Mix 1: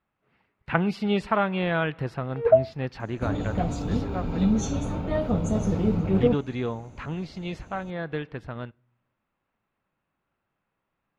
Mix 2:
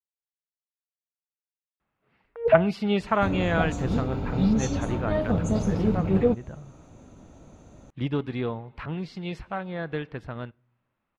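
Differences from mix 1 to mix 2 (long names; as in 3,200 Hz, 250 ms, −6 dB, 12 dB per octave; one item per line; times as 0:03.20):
speech: entry +1.80 s
first sound: add high-frequency loss of the air 490 metres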